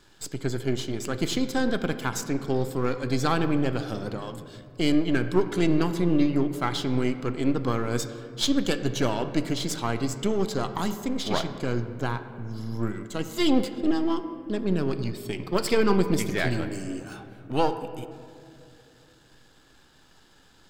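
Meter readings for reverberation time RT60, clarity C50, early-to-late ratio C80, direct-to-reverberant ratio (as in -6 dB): 2.5 s, 10.5 dB, 11.5 dB, 9.0 dB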